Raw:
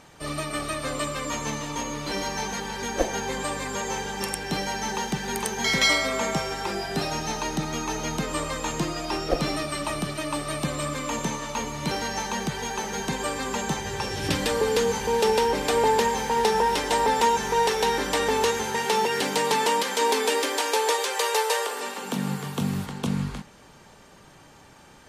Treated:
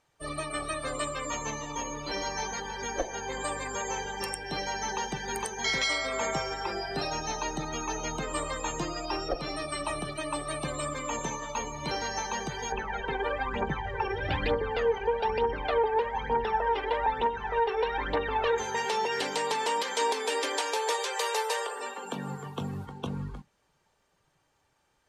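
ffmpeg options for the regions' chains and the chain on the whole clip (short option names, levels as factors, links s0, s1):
-filter_complex "[0:a]asettb=1/sr,asplit=3[s0][s1][s2];[s0]atrim=end=12.724[s3];[s1]atrim=start=12.72:end=18.58,asetpts=PTS-STARTPTS,afade=t=in:d=0.004:c=qsin,afade=t=out:st=5.856:d=0.004:c=qsin,lowpass=2700,aphaser=in_gain=1:out_gain=1:delay=2.7:decay=0.67:speed=1.1:type=triangular[s4];[s2]atrim=start=18.576[s5];[s3][s4]acrossfade=d=0.004:c1=hsin:c2=qsin[s6];[s6][s5]acrossfade=d=0.004:c1=qsin:c2=hsin,afftdn=nr=18:nf=-35,equalizer=f=200:t=o:w=1.1:g=-9,alimiter=limit=0.168:level=0:latency=1:release=427,volume=0.794"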